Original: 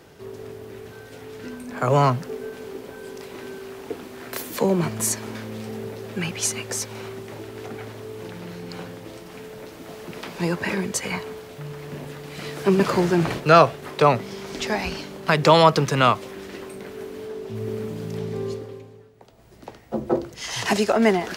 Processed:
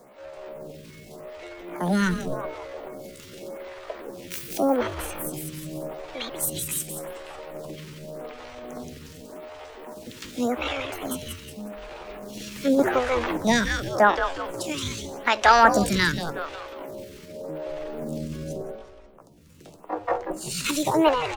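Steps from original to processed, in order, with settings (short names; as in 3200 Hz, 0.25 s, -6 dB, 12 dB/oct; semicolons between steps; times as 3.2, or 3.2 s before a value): frequency-shifting echo 0.181 s, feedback 45%, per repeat -120 Hz, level -7.5 dB; pitch shift +6 st; photocell phaser 0.86 Hz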